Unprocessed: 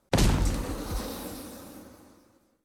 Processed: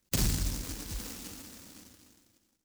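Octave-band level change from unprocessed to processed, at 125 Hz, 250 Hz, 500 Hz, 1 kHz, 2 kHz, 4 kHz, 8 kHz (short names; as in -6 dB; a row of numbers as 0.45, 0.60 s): -6.5, -8.0, -13.0, -13.5, -7.0, -2.5, +1.5 dB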